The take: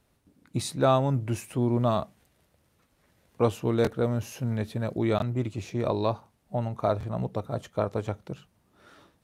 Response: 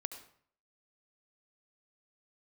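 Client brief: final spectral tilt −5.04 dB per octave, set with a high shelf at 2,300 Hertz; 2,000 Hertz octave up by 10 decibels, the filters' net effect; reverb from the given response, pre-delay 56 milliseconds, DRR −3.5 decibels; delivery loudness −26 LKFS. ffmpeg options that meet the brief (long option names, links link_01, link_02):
-filter_complex "[0:a]equalizer=frequency=2000:width_type=o:gain=8.5,highshelf=frequency=2300:gain=9,asplit=2[link_01][link_02];[1:a]atrim=start_sample=2205,adelay=56[link_03];[link_02][link_03]afir=irnorm=-1:irlink=0,volume=5dB[link_04];[link_01][link_04]amix=inputs=2:normalize=0,volume=-4dB"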